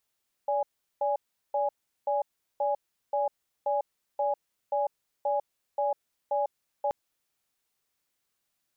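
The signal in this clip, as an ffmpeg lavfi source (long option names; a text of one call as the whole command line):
ffmpeg -f lavfi -i "aevalsrc='0.0447*(sin(2*PI*577*t)+sin(2*PI*828*t))*clip(min(mod(t,0.53),0.15-mod(t,0.53))/0.005,0,1)':duration=6.43:sample_rate=44100" out.wav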